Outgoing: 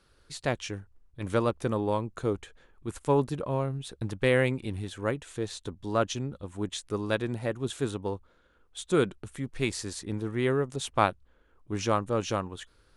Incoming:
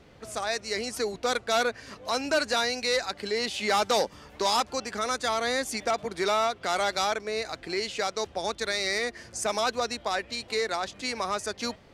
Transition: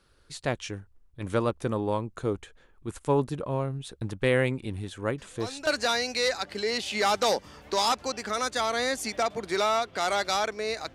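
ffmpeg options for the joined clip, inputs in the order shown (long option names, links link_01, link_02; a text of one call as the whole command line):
ffmpeg -i cue0.wav -i cue1.wav -filter_complex "[1:a]asplit=2[link_01][link_02];[0:a]apad=whole_dur=10.94,atrim=end=10.94,atrim=end=5.672[link_03];[link_02]atrim=start=2.348:end=7.62[link_04];[link_01]atrim=start=1.86:end=2.35,asetpts=PTS-STARTPTS,volume=-11dB,afade=type=in:duration=0.004:curve=hsin,afade=type=out:start_time=0.486:duration=0.004:curve=hsin,adelay=5180[link_05];[link_03][link_04]acrossfade=duration=0.004:curve1=hsin:curve2=hsin[link_06];[link_06][link_05]amix=inputs=2:normalize=0" out.wav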